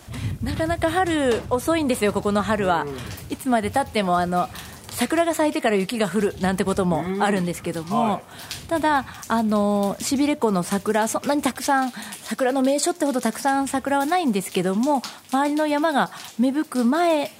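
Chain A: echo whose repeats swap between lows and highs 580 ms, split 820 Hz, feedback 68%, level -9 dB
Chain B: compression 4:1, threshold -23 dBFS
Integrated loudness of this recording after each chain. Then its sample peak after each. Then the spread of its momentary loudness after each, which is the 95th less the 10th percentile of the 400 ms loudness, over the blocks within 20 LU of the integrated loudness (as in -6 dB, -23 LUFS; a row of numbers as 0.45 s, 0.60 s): -22.0 LUFS, -27.5 LUFS; -6.0 dBFS, -10.0 dBFS; 6 LU, 5 LU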